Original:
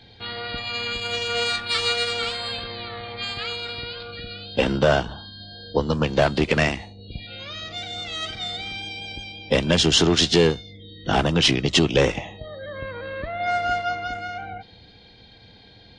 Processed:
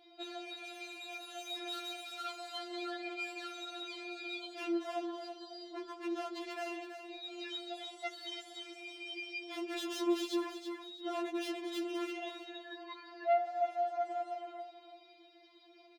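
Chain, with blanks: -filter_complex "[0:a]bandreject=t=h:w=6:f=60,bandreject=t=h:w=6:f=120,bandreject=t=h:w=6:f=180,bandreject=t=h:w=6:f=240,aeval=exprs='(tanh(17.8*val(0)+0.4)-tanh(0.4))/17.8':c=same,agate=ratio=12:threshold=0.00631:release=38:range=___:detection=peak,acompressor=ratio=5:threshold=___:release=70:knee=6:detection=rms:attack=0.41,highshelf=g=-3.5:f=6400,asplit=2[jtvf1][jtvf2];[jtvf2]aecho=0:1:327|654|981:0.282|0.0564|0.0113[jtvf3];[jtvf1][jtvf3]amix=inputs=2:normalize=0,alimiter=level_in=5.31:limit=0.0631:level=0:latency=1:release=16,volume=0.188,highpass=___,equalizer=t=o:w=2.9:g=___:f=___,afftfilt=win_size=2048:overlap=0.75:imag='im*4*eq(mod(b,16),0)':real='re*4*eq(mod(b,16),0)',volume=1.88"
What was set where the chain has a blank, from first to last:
0.224, 0.00891, 140, 6.5, 450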